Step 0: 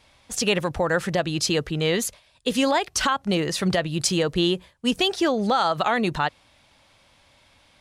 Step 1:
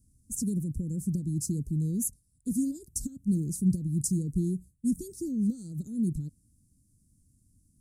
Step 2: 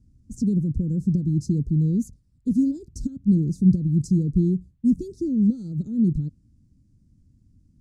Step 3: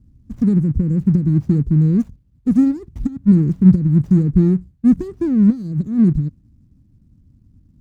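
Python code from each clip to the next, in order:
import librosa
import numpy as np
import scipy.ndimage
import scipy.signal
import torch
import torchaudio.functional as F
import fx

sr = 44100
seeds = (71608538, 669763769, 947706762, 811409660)

y1 = scipy.signal.sosfilt(scipy.signal.cheby2(4, 60, [690.0, 3200.0], 'bandstop', fs=sr, output='sos'), x)
y2 = fx.air_absorb(y1, sr, metres=210.0)
y2 = F.gain(torch.from_numpy(y2), 8.5).numpy()
y3 = scipy.signal.medfilt(y2, 41)
y3 = fx.running_max(y3, sr, window=3)
y3 = F.gain(torch.from_numpy(y3), 7.0).numpy()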